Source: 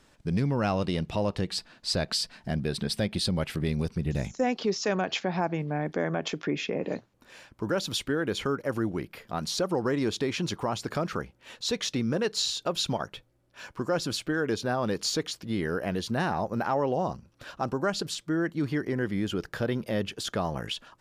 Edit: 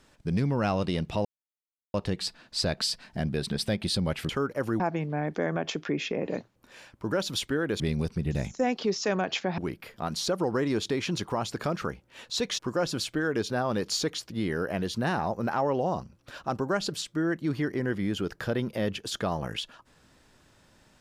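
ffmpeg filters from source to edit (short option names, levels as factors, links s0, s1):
-filter_complex "[0:a]asplit=7[s0][s1][s2][s3][s4][s5][s6];[s0]atrim=end=1.25,asetpts=PTS-STARTPTS,afade=t=out:st=1.246:d=0.004:c=hsin,apad=pad_dur=0.69[s7];[s1]atrim=start=1.25:end=3.602,asetpts=PTS-STARTPTS,afade=t=in:d=0.004:c=hsin[s8];[s2]atrim=start=8.378:end=8.892[s9];[s3]atrim=start=5.378:end=8.382[s10];[s4]atrim=start=3.598:end=5.382[s11];[s5]atrim=start=8.888:end=11.902[s12];[s6]atrim=start=13.718[s13];[s7][s8]concat=n=2:v=0:a=1[s14];[s14][s9]acrossfade=d=0.004:c1=hsin:c2=hsin[s15];[s15][s10]acrossfade=d=0.004:c1=hsin:c2=hsin[s16];[s16][s11]acrossfade=d=0.004:c1=hsin:c2=hsin[s17];[s17][s12]acrossfade=d=0.004:c1=hsin:c2=hsin[s18];[s18][s13]acrossfade=d=0.004:c1=hsin:c2=hsin"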